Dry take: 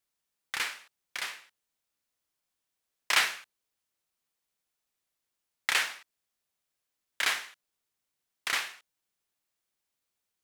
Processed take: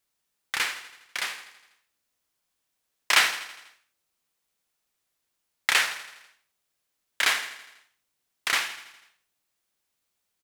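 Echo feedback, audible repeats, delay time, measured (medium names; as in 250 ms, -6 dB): 59%, 5, 82 ms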